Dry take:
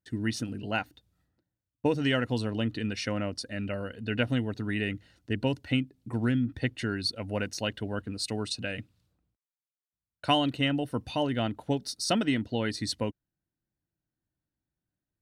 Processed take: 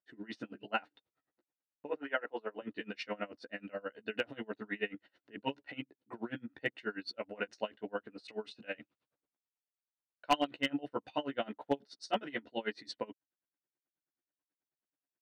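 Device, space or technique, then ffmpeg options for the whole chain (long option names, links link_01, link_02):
helicopter radio: -filter_complex "[0:a]asettb=1/sr,asplit=3[link_01][link_02][link_03];[link_01]atrim=end=1.894[link_04];[link_02]atrim=start=1.89:end=2.62,asetpts=PTS-STARTPTS,afade=type=in:duration=0.004:curve=qsin,afade=type=out:start_time=0.726:duration=0.004:curve=qsin,acrossover=split=290 2600:gain=0.0891 1 0.0708[link_05][link_06][link_07];[link_05][link_06][link_07]amix=inputs=3:normalize=0[link_08];[link_03]atrim=start=2.616[link_09];[link_04][link_08]acrossfade=duration=0.004:curve1=hsin:curve2=qsin[link_10];[link_10][link_09]acrossfade=duration=0.004:curve1=qsin:curve2=hsin,highpass=390,lowpass=2600,asplit=2[link_11][link_12];[link_12]adelay=14,volume=-2.5dB[link_13];[link_11][link_13]amix=inputs=2:normalize=0,aeval=exprs='val(0)*pow(10,-26*(0.5-0.5*cos(2*PI*9.3*n/s))/20)':channel_layout=same,asoftclip=type=hard:threshold=-20.5dB"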